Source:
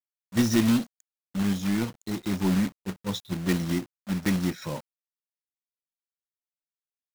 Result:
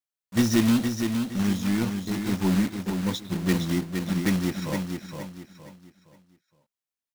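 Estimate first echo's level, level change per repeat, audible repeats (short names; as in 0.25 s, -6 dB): -6.0 dB, -9.5 dB, 4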